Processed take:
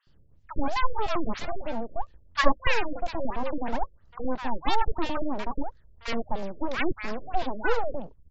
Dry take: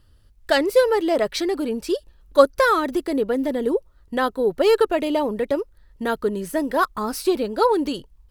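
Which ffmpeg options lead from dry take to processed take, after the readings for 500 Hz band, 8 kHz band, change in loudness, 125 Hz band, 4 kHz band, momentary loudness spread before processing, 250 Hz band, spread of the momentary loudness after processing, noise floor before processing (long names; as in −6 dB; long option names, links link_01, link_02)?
−13.5 dB, −13.0 dB, −9.5 dB, can't be measured, −6.5 dB, 9 LU, −9.5 dB, 10 LU, −55 dBFS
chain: -filter_complex "[0:a]aeval=exprs='abs(val(0))':channel_layout=same,acrossover=split=1100[link_01][link_02];[link_01]adelay=70[link_03];[link_03][link_02]amix=inputs=2:normalize=0,afftfilt=real='re*lt(b*sr/1024,590*pow(7800/590,0.5+0.5*sin(2*PI*3*pts/sr)))':imag='im*lt(b*sr/1024,590*pow(7800/590,0.5+0.5*sin(2*PI*3*pts/sr)))':win_size=1024:overlap=0.75,volume=-2dB"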